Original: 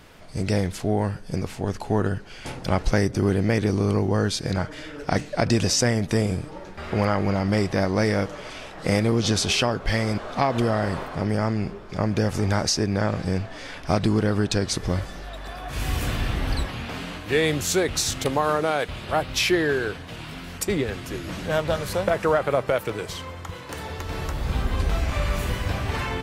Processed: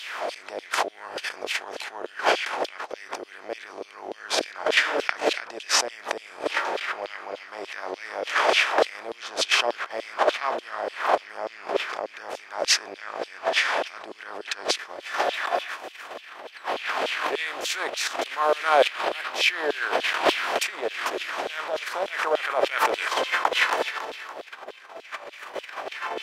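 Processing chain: spectral levelling over time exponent 0.6; gate with hold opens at -15 dBFS; tone controls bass +14 dB, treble -9 dB; compressor with a negative ratio -28 dBFS, ratio -1; LFO high-pass saw down 3.4 Hz 500–3500 Hz; resonant low shelf 230 Hz -10.5 dB, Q 1.5; trim +7 dB

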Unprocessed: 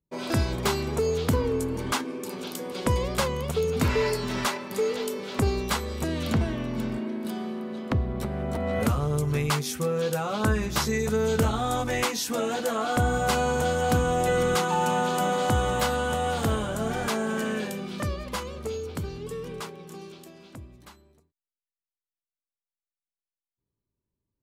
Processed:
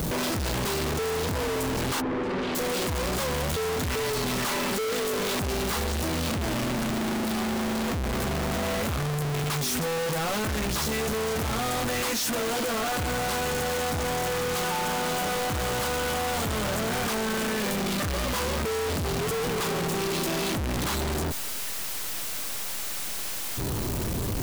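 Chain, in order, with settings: one-bit comparator; 2.00–2.54 s: low-pass 1.6 kHz -> 3.1 kHz 12 dB/octave

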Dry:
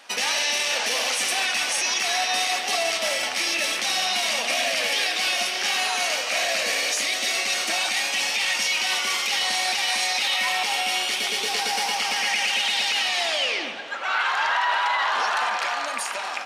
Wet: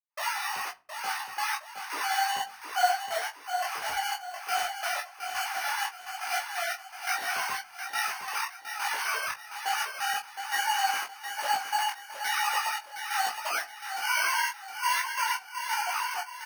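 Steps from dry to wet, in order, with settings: formants replaced by sine waves; low-pass 2.7 kHz 24 dB/octave; peak limiter -18.5 dBFS, peak gain reduction 11 dB; sample-and-hold 12×; frequency shift +39 Hz; harmony voices +12 st -10 dB; trance gate ".xxx..x.x." 87 bpm -60 dB; doubling 18 ms -6 dB; on a send: feedback delay 716 ms, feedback 37%, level -7.5 dB; on the sum: simulated room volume 290 m³, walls furnished, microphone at 0.33 m; detune thickener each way 39 cents

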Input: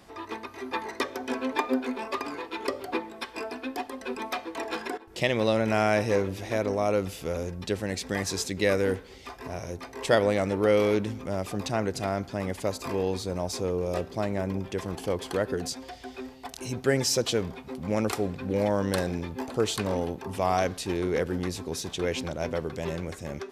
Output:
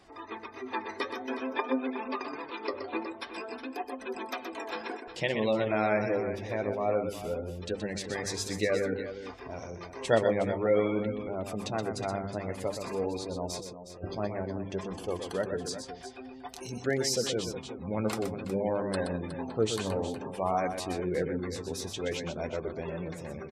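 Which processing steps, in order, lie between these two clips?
hum notches 50/100/150/200/250/300/350 Hz; spectral gate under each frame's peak -25 dB strong; 13.59–14.15 s: compressor with a negative ratio -37 dBFS, ratio -0.5; flange 0.53 Hz, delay 2.4 ms, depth 8.2 ms, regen +51%; on a send: multi-tap echo 124/365 ms -7.5/-12 dB

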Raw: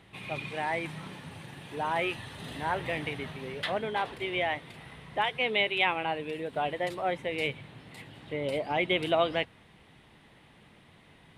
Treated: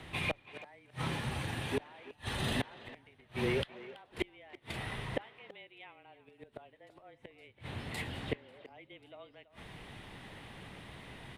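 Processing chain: inverted gate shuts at -27 dBFS, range -34 dB; frequency shift -27 Hz; speakerphone echo 330 ms, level -15 dB; trim +7.5 dB

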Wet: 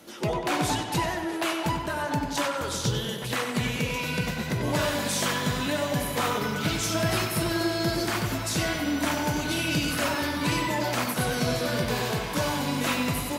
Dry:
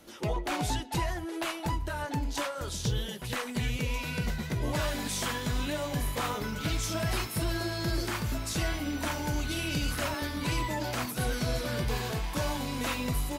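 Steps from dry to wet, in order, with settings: high-pass 110 Hz 12 dB/octave; tape echo 95 ms, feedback 71%, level -6 dB, low-pass 4.9 kHz; trim +5 dB

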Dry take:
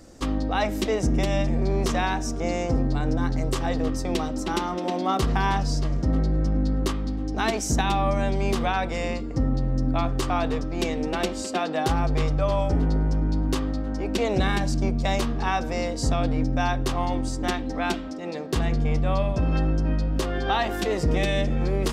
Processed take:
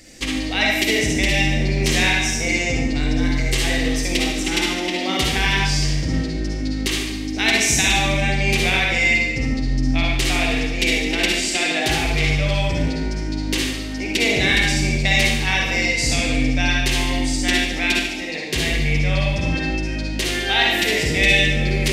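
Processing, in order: resonant high shelf 1.6 kHz +9.5 dB, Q 3; reverberation RT60 0.95 s, pre-delay 48 ms, DRR -2 dB; trim -1.5 dB

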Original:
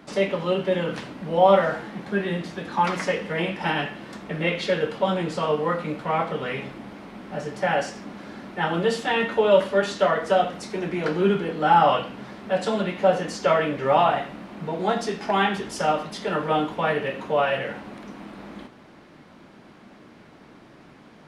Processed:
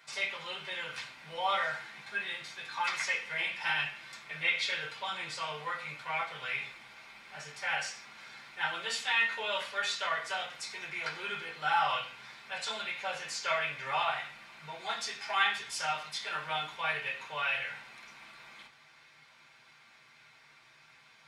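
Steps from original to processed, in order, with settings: amplifier tone stack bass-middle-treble 10-0-10; reverberation RT60 0.15 s, pre-delay 3 ms, DRR -1 dB; trim -4 dB

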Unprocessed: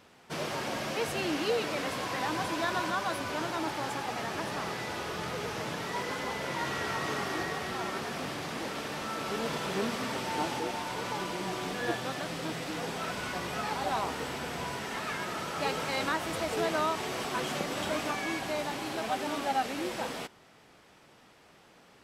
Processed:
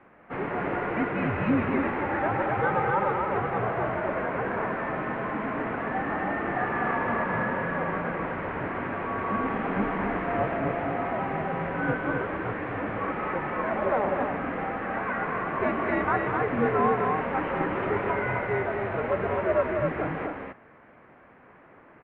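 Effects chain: loudspeakers at several distances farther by 66 m -9 dB, 88 m -4 dB; mistuned SSB -200 Hz 340–2300 Hz; trim +5.5 dB

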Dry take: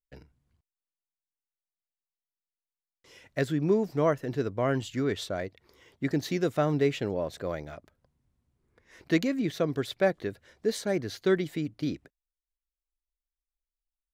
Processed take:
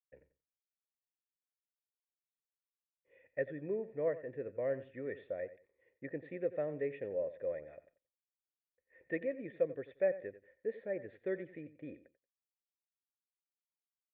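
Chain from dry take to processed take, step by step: expander -53 dBFS; cascade formant filter e; on a send: feedback delay 90 ms, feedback 22%, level -15 dB

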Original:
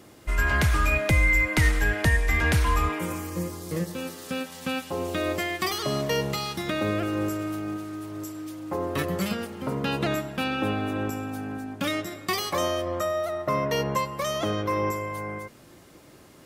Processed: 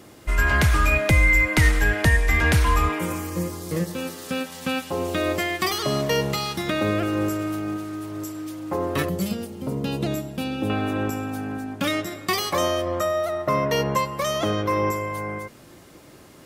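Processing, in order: 9.09–10.70 s: peaking EQ 1.5 kHz -13.5 dB 2 oct; trim +3.5 dB

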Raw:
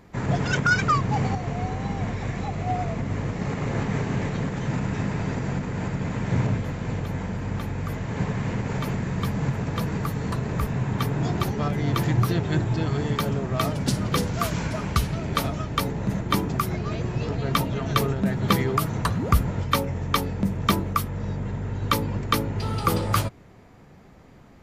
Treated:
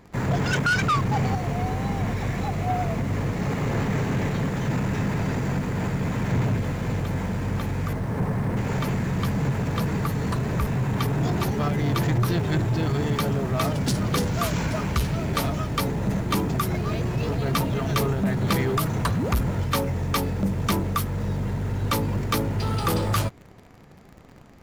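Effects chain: 7.93–8.57 s: low-pass 1.6 kHz 12 dB/octave; in parallel at -6 dB: bit crusher 7-bit; on the sum: saturation -17.5 dBFS, distortion -12 dB

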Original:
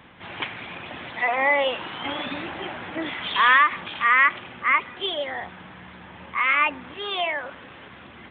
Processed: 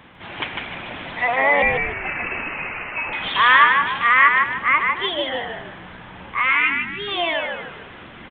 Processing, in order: 1.62–3.13 s: frequency inversion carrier 2.9 kHz; 6.50–7.08 s: spectral selection erased 440–1300 Hz; frequency-shifting echo 151 ms, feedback 37%, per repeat -62 Hz, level -3.5 dB; trim +2.5 dB

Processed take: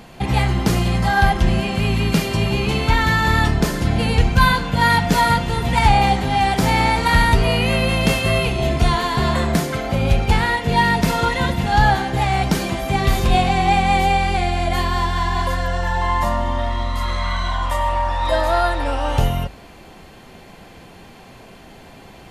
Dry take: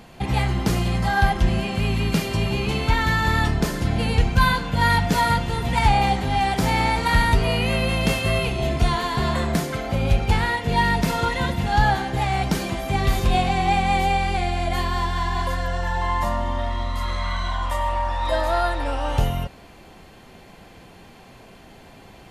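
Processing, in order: hum notches 50/100 Hz; trim +4 dB

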